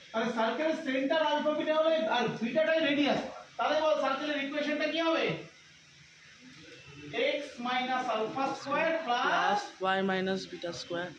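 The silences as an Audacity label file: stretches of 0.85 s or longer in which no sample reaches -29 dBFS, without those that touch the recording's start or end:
5.350000	7.150000	silence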